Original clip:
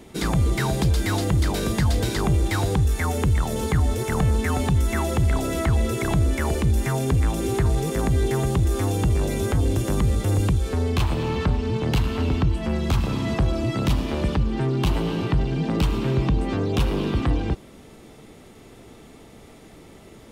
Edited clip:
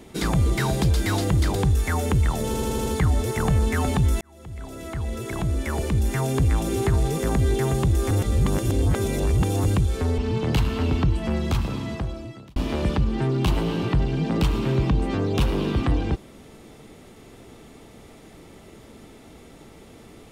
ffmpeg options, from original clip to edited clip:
-filter_complex "[0:a]asplit=12[a][b][c][d][e][f][g][h][i][j][k][l];[a]atrim=end=1.552[m];[b]atrim=start=2.668:end=3.662[n];[c]atrim=start=3.578:end=3.662[o];[d]atrim=start=3.578:end=3.662[p];[e]atrim=start=3.578:end=3.662[q];[f]atrim=start=3.578:end=3.662[r];[g]atrim=start=3.578:end=4.93,asetpts=PTS-STARTPTS,afade=t=out:st=1.348:d=0.004:c=hsin[s];[h]atrim=start=4.93:end=8.832,asetpts=PTS-STARTPTS,afade=t=in:d=2.14[t];[i]atrim=start=8.828:end=10.362,asetpts=PTS-STARTPTS,areverse[u];[j]atrim=start=10.358:end=10.902[v];[k]atrim=start=11.568:end=13.95,asetpts=PTS-STARTPTS,afade=t=out:st=1.142:d=1.24[w];[l]atrim=start=13.95,asetpts=PTS-STARTPTS,afade=t=in:d=0.004:c=hsin[x];[m][n]acrossfade=d=0.004:c1=hsin:c2=hsin[y];[y][o]acrossfade=d=0.004:c1=hsin:c2=hsin[z];[z][p]acrossfade=d=0.004:c1=hsin:c2=hsin[aa];[aa][q]acrossfade=d=0.004:c1=hsin:c2=hsin[ab];[ab][r]acrossfade=d=0.004:c1=hsin:c2=hsin[ac];[s][t]concat=n=2:v=0:a=1[ad];[ac][ad]acrossfade=d=0.004:c1=hsin:c2=hsin[ae];[ae][u]acrossfade=d=0.004:c1=hsin:c2=hsin[af];[af][v]acrossfade=d=0.004:c1=hsin:c2=hsin[ag];[w][x]concat=n=2:v=0:a=1[ah];[ag][ah]acrossfade=d=0.004:c1=hsin:c2=hsin"

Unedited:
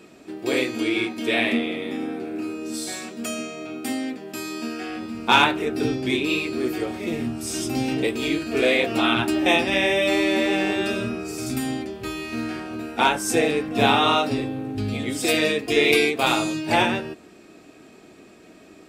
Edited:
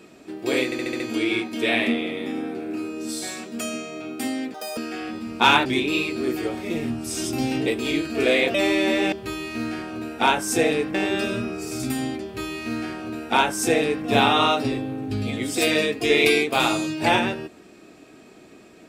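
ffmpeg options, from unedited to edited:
-filter_complex "[0:a]asplit=12[a][b][c][d][e][f][g][h][i][j][k][l];[a]atrim=end=0.722[m];[b]atrim=start=0.648:end=0.722[n];[c]atrim=start=0.648:end=0.722[o];[d]atrim=start=0.648:end=0.722[p];[e]atrim=start=0.648:end=0.722[q];[f]atrim=start=0.648:end=4.194[r];[g]atrim=start=4.19:end=4.65,asetpts=PTS-STARTPTS,asetrate=86877,aresample=44100,atrim=end_sample=10297,asetpts=PTS-STARTPTS[s];[h]atrim=start=4.646:end=5.532[t];[i]atrim=start=6.018:end=8.912[u];[j]atrim=start=10.028:end=10.612[v];[k]atrim=start=11.898:end=13.722[w];[l]atrim=start=10.608[x];[m][n]acrossfade=d=0.004:c1=hsin:c2=hsin[y];[y][o]acrossfade=d=0.004:c1=hsin:c2=hsin[z];[z][p]acrossfade=d=0.004:c1=hsin:c2=hsin[aa];[aa][q]acrossfade=d=0.004:c1=hsin:c2=hsin[ab];[ab][r]acrossfade=d=0.004:c1=hsin:c2=hsin[ac];[ac][s]acrossfade=d=0.004:c1=hsin:c2=hsin[ad];[ad][t]acrossfade=d=0.004:c1=hsin:c2=hsin[ae];[ae][u]acrossfade=d=0.004:c1=hsin:c2=hsin[af];[af][v]acrossfade=d=0.004:c1=hsin:c2=hsin[ag];[ag][w]acrossfade=d=0.004:c1=hsin:c2=hsin[ah];[ah][x]acrossfade=d=0.004:c1=hsin:c2=hsin"

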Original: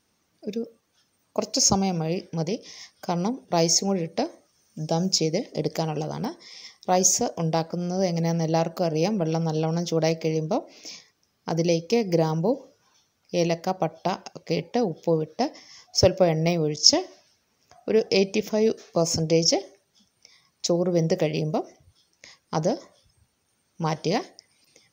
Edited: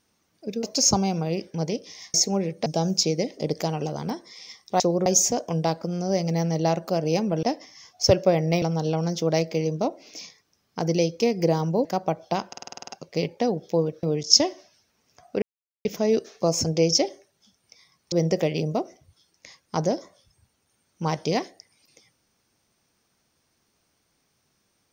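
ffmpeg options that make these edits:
-filter_complex "[0:a]asplit=21[a][b][c][d][e][f][g][h][i][j][k][l][m][n][o][p][q][r][s][t][u];[a]atrim=end=0.632[v];[b]atrim=start=1.418:end=2.932[w];[c]atrim=start=3.688:end=4.212[x];[d]atrim=start=4.808:end=6.952[y];[e]atrim=start=20.648:end=20.912[z];[f]atrim=start=6.948:end=9.322[aa];[g]atrim=start=15.368:end=16.562[ab];[h]atrim=start=9.318:end=12.552[ac];[i]atrim=start=13.588:end=14.272[ad];[j]atrim=start=14.218:end=14.272[ae];[k]atrim=start=14.218:end=14.272[af];[l]atrim=start=14.218:end=14.272[ag];[m]atrim=start=14.218:end=14.272[ah];[n]atrim=start=14.218:end=14.272[ai];[o]atrim=start=14.218:end=14.272[aj];[p]atrim=start=14.218:end=14.272[ak];[q]atrim=start=14.218:end=15.372[al];[r]atrim=start=16.558:end=17.95,asetpts=PTS-STARTPTS,afade=t=out:st=1.388:d=0.004:c=hsin[am];[s]atrim=start=17.95:end=18.38,asetpts=PTS-STARTPTS,volume=0[an];[t]atrim=start=18.38:end=20.652,asetpts=PTS-STARTPTS,afade=t=in:d=0.004:c=hsin[ao];[u]atrim=start=20.908[ap];[v][w]acrossfade=d=0.004:c1=hsin:c2=hsin[aq];[aq][x]acrossfade=d=0.004:c1=hsin:c2=hsin[ar];[ar][y]acrossfade=d=0.004:c1=hsin:c2=hsin[as];[as][z]acrossfade=d=0.004:c1=hsin:c2=hsin[at];[at][aa]acrossfade=d=0.004:c1=hsin:c2=hsin[au];[au][ab]acrossfade=d=0.004:c1=hsin:c2=hsin[av];[av][ac]acrossfade=d=0.004:c1=hsin:c2=hsin[aw];[aw][ad]acrossfade=d=0.004:c1=hsin:c2=hsin[ax];[ax][ae]acrossfade=d=0.004:c1=hsin:c2=hsin[ay];[ay][af]acrossfade=d=0.004:c1=hsin:c2=hsin[az];[az][ag]acrossfade=d=0.004:c1=hsin:c2=hsin[ba];[ba][ah]acrossfade=d=0.004:c1=hsin:c2=hsin[bb];[bb][ai]acrossfade=d=0.004:c1=hsin:c2=hsin[bc];[bc][aj]acrossfade=d=0.004:c1=hsin:c2=hsin[bd];[bd][ak]acrossfade=d=0.004:c1=hsin:c2=hsin[be];[be][al]acrossfade=d=0.004:c1=hsin:c2=hsin[bf];[am][an][ao]concat=n=3:v=0:a=1[bg];[bf][bg]acrossfade=d=0.004:c1=hsin:c2=hsin[bh];[bh][ap]acrossfade=d=0.004:c1=hsin:c2=hsin"

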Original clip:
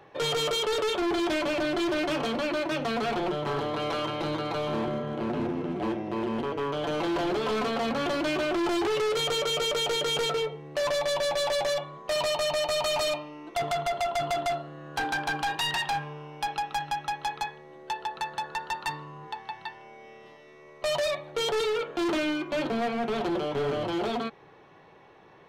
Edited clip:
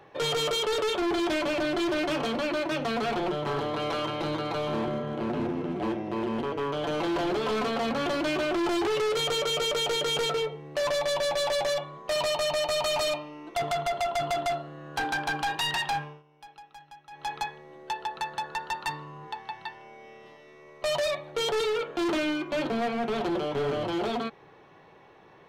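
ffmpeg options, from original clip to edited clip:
-filter_complex "[0:a]asplit=3[a][b][c];[a]atrim=end=16.23,asetpts=PTS-STARTPTS,afade=t=out:st=16:d=0.23:silence=0.11885[d];[b]atrim=start=16.23:end=17.1,asetpts=PTS-STARTPTS,volume=-18.5dB[e];[c]atrim=start=17.1,asetpts=PTS-STARTPTS,afade=t=in:d=0.23:silence=0.11885[f];[d][e][f]concat=n=3:v=0:a=1"

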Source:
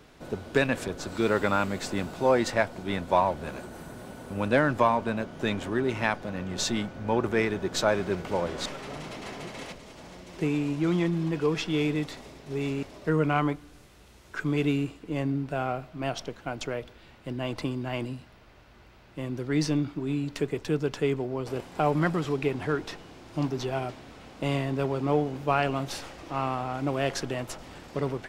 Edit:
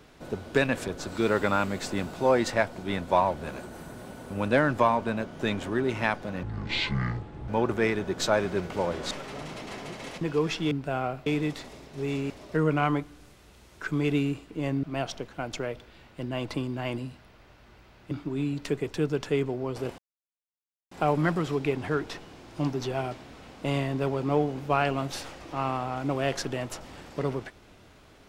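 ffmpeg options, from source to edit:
-filter_complex "[0:a]asplit=9[a][b][c][d][e][f][g][h][i];[a]atrim=end=6.434[j];[b]atrim=start=6.43:end=7.03,asetpts=PTS-STARTPTS,asetrate=25137,aresample=44100,atrim=end_sample=46421,asetpts=PTS-STARTPTS[k];[c]atrim=start=7.026:end=9.762[l];[d]atrim=start=11.288:end=11.792[m];[e]atrim=start=15.358:end=15.912[n];[f]atrim=start=11.788:end=15.362[o];[g]atrim=start=15.908:end=19.192[p];[h]atrim=start=19.818:end=21.69,asetpts=PTS-STARTPTS,afade=t=out:st=1.868:d=0.004:c=hsin,apad=pad_dur=0.93[q];[i]atrim=start=21.69,asetpts=PTS-STARTPTS,afade=t=in:d=0.004:c=hsin[r];[j][k]acrossfade=d=0.004:c1=hsin:c2=hsin[s];[s][l]acrossfade=d=0.004:c1=hsin:c2=hsin[t];[t][m]acrossfade=d=0.004:c1=hsin:c2=hsin[u];[u][n]acrossfade=d=0.004:c1=hsin:c2=hsin[v];[v][o]acrossfade=d=0.004:c1=hsin:c2=hsin[w];[w][p]acrossfade=d=0.004:c1=hsin:c2=hsin[x];[q][r]concat=n=2:v=0:a=1[y];[x][y]acrossfade=d=0.004:c1=hsin:c2=hsin"

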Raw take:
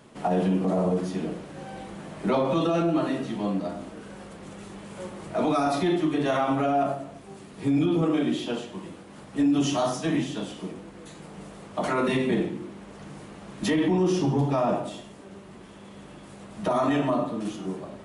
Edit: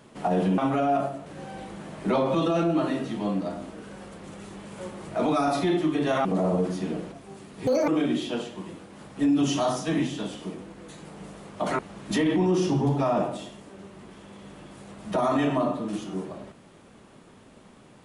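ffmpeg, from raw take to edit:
-filter_complex "[0:a]asplit=8[a][b][c][d][e][f][g][h];[a]atrim=end=0.582[i];[b]atrim=start=6.438:end=7.122[j];[c]atrim=start=1.448:end=6.442[k];[d]atrim=start=0.578:end=1.452[l];[e]atrim=start=7.118:end=7.674[m];[f]atrim=start=7.67:end=8.05,asetpts=PTS-STARTPTS,asetrate=80262,aresample=44100[n];[g]atrim=start=8.046:end=11.962[o];[h]atrim=start=13.308[p];[i][j]acrossfade=d=0.004:c1=hsin:c2=hsin[q];[q][k]acrossfade=d=0.004:c1=hsin:c2=hsin[r];[r][l]acrossfade=d=0.004:c1=hsin:c2=hsin[s];[s][m]acrossfade=d=0.004:c1=hsin:c2=hsin[t];[t][n]acrossfade=d=0.004:c1=hsin:c2=hsin[u];[u][o]acrossfade=d=0.004:c1=hsin:c2=hsin[v];[v][p]acrossfade=d=0.004:c1=hsin:c2=hsin"

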